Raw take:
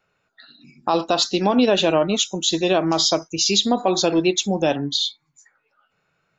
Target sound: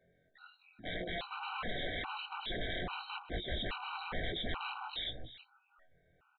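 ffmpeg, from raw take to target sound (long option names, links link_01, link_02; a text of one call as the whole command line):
ffmpeg -i in.wav -filter_complex "[0:a]afftfilt=real='re':imag='-im':win_size=2048:overlap=0.75,equalizer=frequency=3000:width_type=o:width=1.7:gain=-7.5,acompressor=threshold=-28dB:ratio=4,alimiter=limit=-24dB:level=0:latency=1:release=64,aresample=8000,aeval=exprs='0.0112*(abs(mod(val(0)/0.0112+3,4)-2)-1)':channel_layout=same,aresample=44100,asubboost=boost=6:cutoff=70,asplit=2[link_01][link_02];[link_02]adelay=349.9,volume=-12dB,highshelf=frequency=4000:gain=-7.87[link_03];[link_01][link_03]amix=inputs=2:normalize=0,afftfilt=real='re*gt(sin(2*PI*1.2*pts/sr)*(1-2*mod(floor(b*sr/1024/770),2)),0)':imag='im*gt(sin(2*PI*1.2*pts/sr)*(1-2*mod(floor(b*sr/1024/770),2)),0)':win_size=1024:overlap=0.75,volume=7dB" out.wav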